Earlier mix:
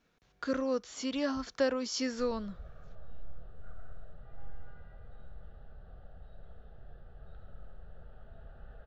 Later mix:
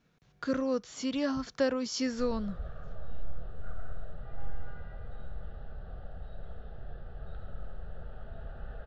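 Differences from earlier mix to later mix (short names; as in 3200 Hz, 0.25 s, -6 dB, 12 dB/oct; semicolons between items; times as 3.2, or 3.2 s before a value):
speech: add bell 140 Hz +10 dB 1.1 oct; background +8.0 dB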